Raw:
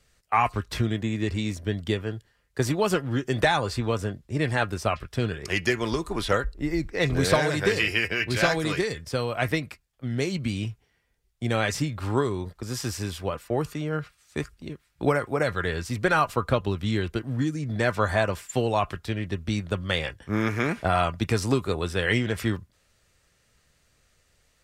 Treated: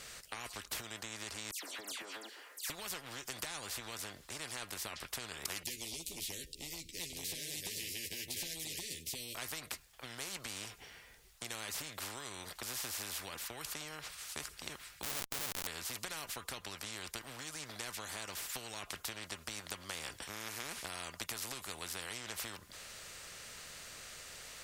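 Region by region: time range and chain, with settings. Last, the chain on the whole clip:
1.51–2.7 Chebyshev high-pass 270 Hz, order 6 + dispersion lows, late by 0.121 s, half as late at 2500 Hz + compressor 5:1, threshold -35 dBFS
5.63–9.35 inverse Chebyshev band-stop 740–1500 Hz, stop band 60 dB + doubler 12 ms -4 dB
15.03–15.67 Bessel low-pass 540 Hz + Schmitt trigger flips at -31.5 dBFS
whole clip: compressor, threshold -31 dBFS; low shelf 440 Hz -11.5 dB; spectral compressor 4:1; gain +3 dB

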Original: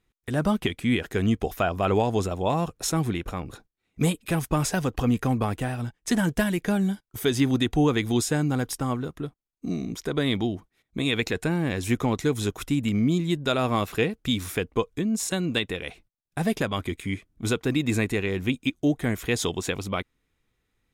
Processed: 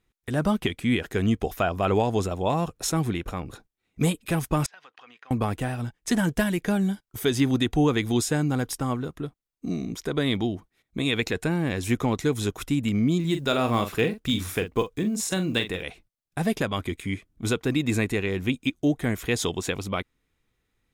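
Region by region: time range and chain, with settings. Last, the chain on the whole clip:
4.66–5.31 HPF 1400 Hz + compressor 4:1, threshold -44 dBFS + air absorption 240 m
13.2–15.83 block floating point 7-bit + doubler 43 ms -9 dB
whole clip: dry

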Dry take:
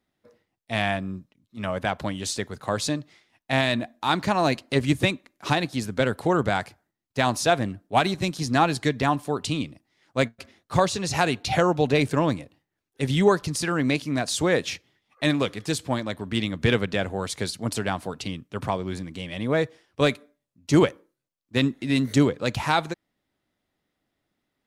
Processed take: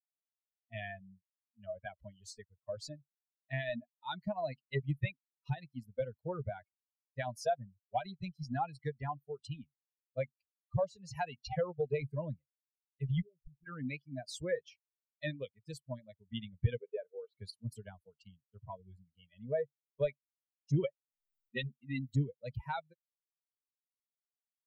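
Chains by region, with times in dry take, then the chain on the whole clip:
13.21–13.66 steep low-pass 700 Hz 48 dB/oct + compressor 8:1, threshold -29 dBFS
16.78–17.37 speaker cabinet 310–3800 Hz, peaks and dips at 430 Hz +8 dB, 1900 Hz -5 dB, 3200 Hz -8 dB + doubler 43 ms -13.5 dB
20.82–21.78 bell 86 Hz -12 dB 0.68 oct + comb 5.3 ms, depth 79% + upward compressor, threshold -42 dBFS
whole clip: per-bin expansion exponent 3; EQ curve 140 Hz 0 dB, 240 Hz -17 dB, 600 Hz -3 dB, 1200 Hz -22 dB, 1900 Hz -11 dB, 8200 Hz -25 dB; compressor 2:1, threshold -46 dBFS; gain +9.5 dB

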